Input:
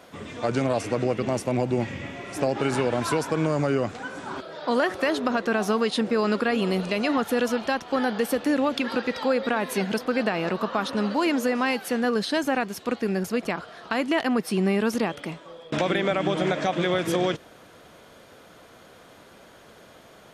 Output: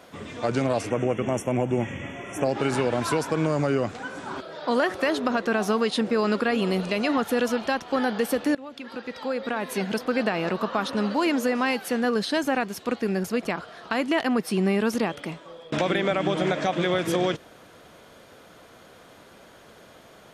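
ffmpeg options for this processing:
-filter_complex "[0:a]asplit=3[a][b][c];[a]afade=t=out:st=0.89:d=0.02[d];[b]asuperstop=centerf=4400:order=20:qfactor=2.2,afade=t=in:st=0.89:d=0.02,afade=t=out:st=2.44:d=0.02[e];[c]afade=t=in:st=2.44:d=0.02[f];[d][e][f]amix=inputs=3:normalize=0,asplit=2[g][h];[g]atrim=end=8.55,asetpts=PTS-STARTPTS,afade=t=out:st=8.546:d=0.004:c=hsin:silence=0.0944061[i];[h]atrim=start=8.55,asetpts=PTS-STARTPTS,afade=t=in:d=1.56:silence=0.0944061[j];[i][j]concat=n=2:v=0:a=1"

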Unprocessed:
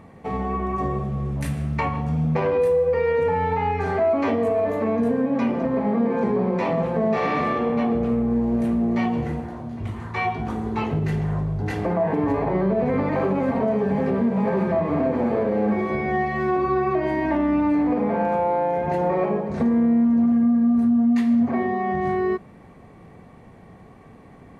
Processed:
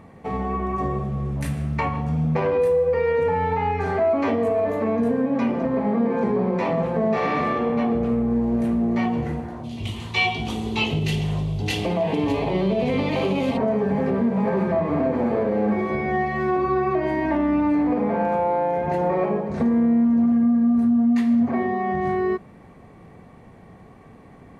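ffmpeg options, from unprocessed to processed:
-filter_complex "[0:a]asplit=3[a][b][c];[a]afade=t=out:st=9.63:d=0.02[d];[b]highshelf=f=2.2k:t=q:w=3:g=11,afade=t=in:st=9.63:d=0.02,afade=t=out:st=13.56:d=0.02[e];[c]afade=t=in:st=13.56:d=0.02[f];[d][e][f]amix=inputs=3:normalize=0"

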